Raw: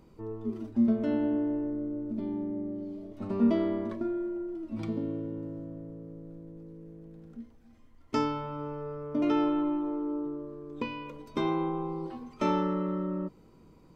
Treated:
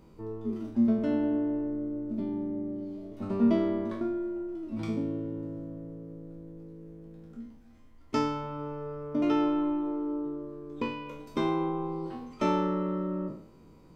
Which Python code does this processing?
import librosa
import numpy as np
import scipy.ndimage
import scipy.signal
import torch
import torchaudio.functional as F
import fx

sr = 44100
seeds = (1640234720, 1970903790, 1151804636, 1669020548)

y = fx.spec_trails(x, sr, decay_s=0.58)